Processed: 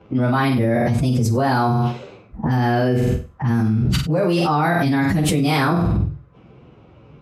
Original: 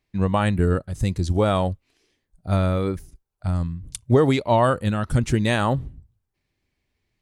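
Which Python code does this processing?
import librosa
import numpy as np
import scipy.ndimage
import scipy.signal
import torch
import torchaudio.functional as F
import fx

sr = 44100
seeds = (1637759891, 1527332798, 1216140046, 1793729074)

y = fx.pitch_bins(x, sr, semitones=4.5)
y = fx.env_lowpass(y, sr, base_hz=1100.0, full_db=-20.0)
y = scipy.signal.sosfilt(scipy.signal.butter(2, 110.0, 'highpass', fs=sr, output='sos'), y)
y = fx.room_flutter(y, sr, wall_m=8.1, rt60_s=0.34)
y = fx.env_flatten(y, sr, amount_pct=100)
y = F.gain(torch.from_numpy(y), -3.0).numpy()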